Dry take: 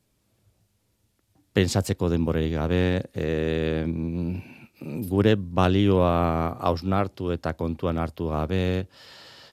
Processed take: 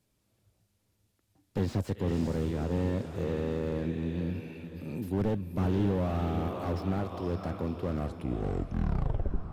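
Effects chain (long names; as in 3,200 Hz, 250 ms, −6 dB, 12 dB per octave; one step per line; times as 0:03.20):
turntable brake at the end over 1.66 s
feedback delay with all-pass diffusion 523 ms, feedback 43%, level −12 dB
slew-rate limiting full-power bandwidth 33 Hz
level −5 dB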